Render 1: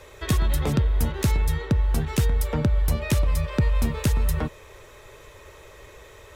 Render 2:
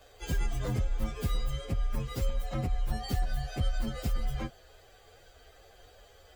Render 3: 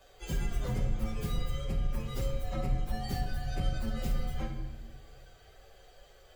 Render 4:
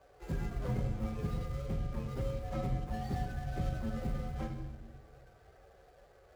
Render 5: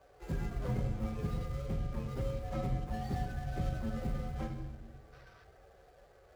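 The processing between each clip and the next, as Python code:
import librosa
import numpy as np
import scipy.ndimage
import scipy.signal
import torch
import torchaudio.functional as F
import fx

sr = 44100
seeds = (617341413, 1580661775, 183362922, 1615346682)

y1 = fx.partial_stretch(x, sr, pct=126)
y1 = y1 * librosa.db_to_amplitude(-5.5)
y2 = fx.room_shoebox(y1, sr, seeds[0], volume_m3=620.0, walls='mixed', distance_m=1.1)
y2 = y2 * librosa.db_to_amplitude(-3.5)
y3 = scipy.ndimage.median_filter(y2, 15, mode='constant')
y3 = scipy.signal.sosfilt(scipy.signal.butter(2, 53.0, 'highpass', fs=sr, output='sos'), y3)
y4 = fx.spec_box(y3, sr, start_s=5.13, length_s=0.31, low_hz=920.0, high_hz=6200.0, gain_db=8)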